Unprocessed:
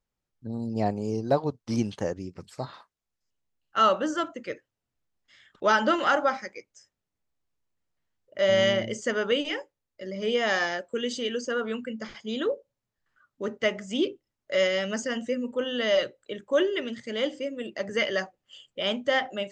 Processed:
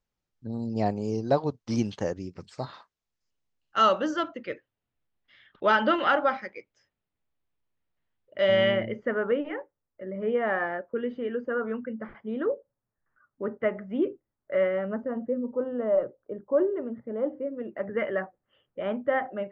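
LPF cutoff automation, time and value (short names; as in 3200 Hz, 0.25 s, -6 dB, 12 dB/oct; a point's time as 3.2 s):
LPF 24 dB/oct
3.85 s 7100 Hz
4.51 s 3800 Hz
8.42 s 3800 Hz
9.16 s 1700 Hz
14.65 s 1700 Hz
15.14 s 1100 Hz
17.23 s 1100 Hz
17.77 s 1700 Hz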